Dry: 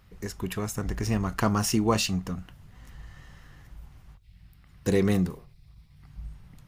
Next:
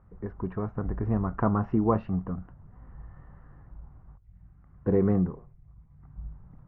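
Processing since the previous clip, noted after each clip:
low-pass filter 1,300 Hz 24 dB per octave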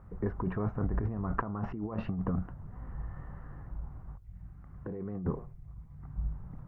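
compressor whose output falls as the input rises −33 dBFS, ratio −1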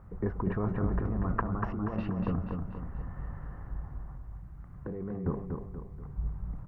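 repeating echo 240 ms, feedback 45%, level −5 dB
level +1 dB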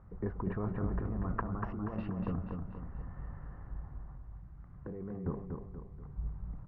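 high-frequency loss of the air 110 metres
level −4.5 dB

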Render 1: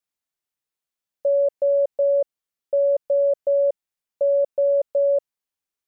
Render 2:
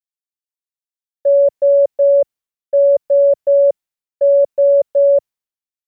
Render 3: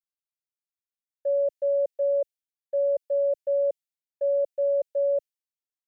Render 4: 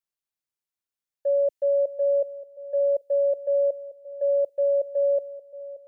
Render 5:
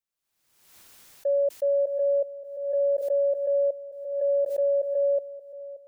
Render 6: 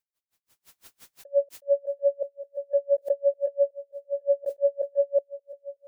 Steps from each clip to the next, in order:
multiband upward and downward expander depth 100%; level +8 dB
low-shelf EQ 480 Hz −11.5 dB; phaser with its sweep stopped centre 450 Hz, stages 4; level −7 dB
bucket-brigade delay 577 ms, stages 2,048, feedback 33%, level −14 dB; level +2 dB
background raised ahead of every attack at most 58 dB per second; level −1.5 dB
tremolo with a sine in dB 5.8 Hz, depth 38 dB; level +5.5 dB

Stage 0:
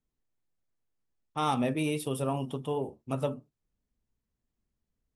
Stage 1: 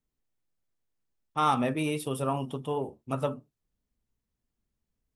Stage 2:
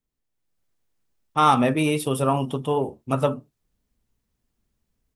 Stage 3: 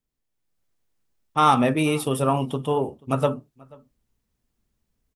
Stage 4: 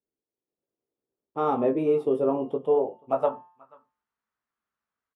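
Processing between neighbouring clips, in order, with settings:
dynamic equaliser 1,300 Hz, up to +7 dB, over −44 dBFS, Q 1.3
automatic gain control gain up to 8 dB
slap from a distant wall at 83 metres, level −25 dB
hum removal 177.1 Hz, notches 19; band-pass filter sweep 410 Hz → 1,300 Hz, 0:02.40–0:03.95; double-tracking delay 18 ms −6.5 dB; level +3 dB

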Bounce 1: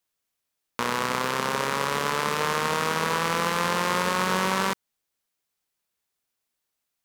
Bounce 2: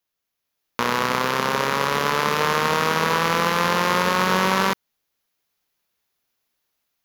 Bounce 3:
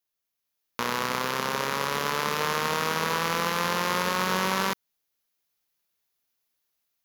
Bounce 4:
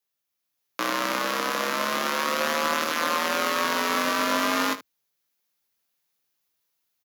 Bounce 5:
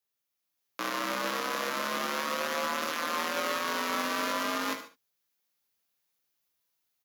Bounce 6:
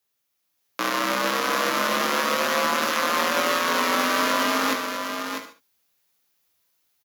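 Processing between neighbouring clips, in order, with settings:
parametric band 8,400 Hz −15 dB 0.26 octaves; automatic gain control gain up to 6.5 dB
high-shelf EQ 4,500 Hz +6 dB; level −7 dB
frequency shifter +74 Hz; on a send: ambience of single reflections 19 ms −8 dB, 75 ms −15 dB; on the sum: level +1 dB
brickwall limiter −18 dBFS, peak gain reduction 8 dB; reverb whose tail is shaped and stops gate 160 ms flat, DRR 10 dB; level −3 dB
single-tap delay 647 ms −6.5 dB; level +8 dB

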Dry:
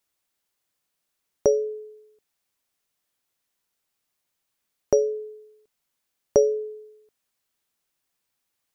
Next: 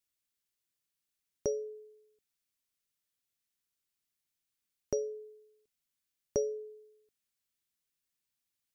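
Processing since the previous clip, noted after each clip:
parametric band 750 Hz −10 dB 1.9 octaves
level −7 dB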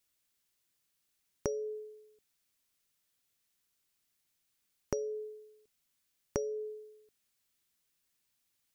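downward compressor 10 to 1, threshold −38 dBFS, peak gain reduction 12.5 dB
level +7 dB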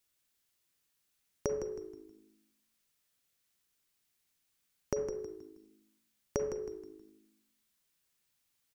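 echo with shifted repeats 159 ms, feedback 35%, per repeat −53 Hz, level −10 dB
on a send at −7 dB: convolution reverb RT60 0.60 s, pre-delay 34 ms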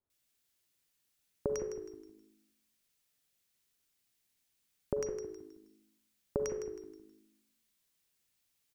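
multiband delay without the direct sound lows, highs 100 ms, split 1,200 Hz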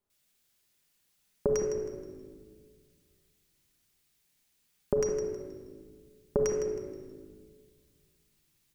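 rectangular room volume 2,600 cubic metres, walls mixed, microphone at 1.3 metres
level +4.5 dB

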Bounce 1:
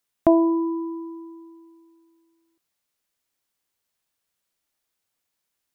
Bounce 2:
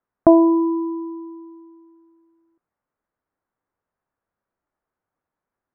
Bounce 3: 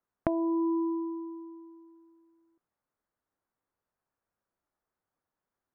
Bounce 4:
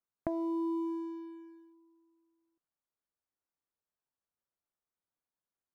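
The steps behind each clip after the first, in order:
low-pass filter 1,500 Hz 24 dB per octave; level +5 dB
downward compressor 16 to 1, threshold −21 dBFS, peak gain reduction 15.5 dB; level −4.5 dB
leveller curve on the samples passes 1; level −9 dB

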